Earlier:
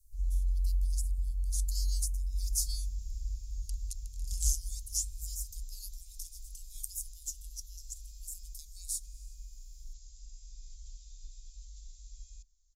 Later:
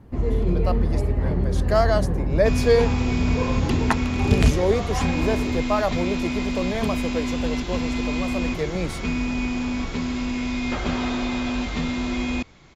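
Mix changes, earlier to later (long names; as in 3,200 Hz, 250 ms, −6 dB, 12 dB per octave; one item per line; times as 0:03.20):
speech: add tilt shelving filter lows +9.5 dB, about 1,500 Hz
second sound +9.0 dB
master: remove inverse Chebyshev band-stop filter 160–1,700 Hz, stop band 70 dB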